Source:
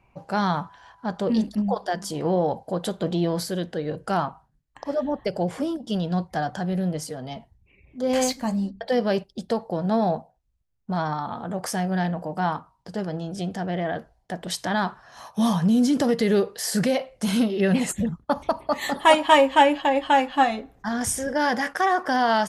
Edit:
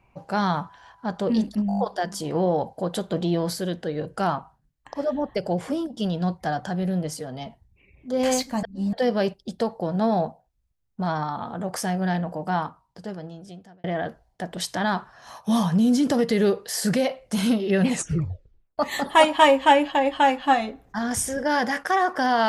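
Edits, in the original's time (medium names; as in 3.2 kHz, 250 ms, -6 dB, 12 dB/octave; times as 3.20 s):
1.68 s: stutter 0.02 s, 6 plays
8.53–8.83 s: reverse
12.41–13.74 s: fade out
17.84 s: tape stop 0.84 s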